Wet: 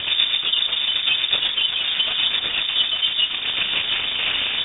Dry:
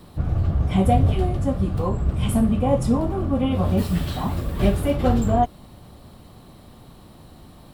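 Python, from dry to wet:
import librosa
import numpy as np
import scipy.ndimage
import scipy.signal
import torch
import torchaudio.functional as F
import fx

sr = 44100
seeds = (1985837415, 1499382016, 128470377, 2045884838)

y = fx.delta_mod(x, sr, bps=32000, step_db=-21.0)
y = fx.graphic_eq(y, sr, hz=(125, 250, 500, 1000, 2000), db=(6, -11, 10, 10, 4))
y = fx.rider(y, sr, range_db=4, speed_s=0.5)
y = fx.stretch_grains(y, sr, factor=0.6, grain_ms=77.0)
y = fx.rotary_switch(y, sr, hz=8.0, then_hz=0.8, switch_at_s=3.44)
y = fx.doubler(y, sr, ms=28.0, db=-13)
y = y + 10.0 ** (-9.0 / 20.0) * np.pad(y, (int(1112 * sr / 1000.0), 0))[:len(y)]
y = fx.freq_invert(y, sr, carrier_hz=3600)
y = y * 10.0 ** (-2.0 / 20.0)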